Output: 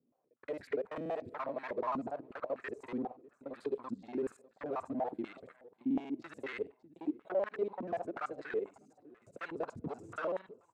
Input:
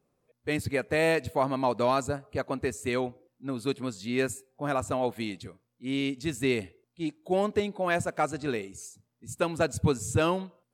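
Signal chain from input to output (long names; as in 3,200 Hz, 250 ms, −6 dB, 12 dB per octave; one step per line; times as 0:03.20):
reversed piece by piece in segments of 48 ms
soft clipping −29 dBFS, distortion −8 dB
on a send: repeating echo 598 ms, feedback 37%, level −21 dB
on the sum: band-pass on a step sequencer 8.2 Hz 250–1,700 Hz
level +5 dB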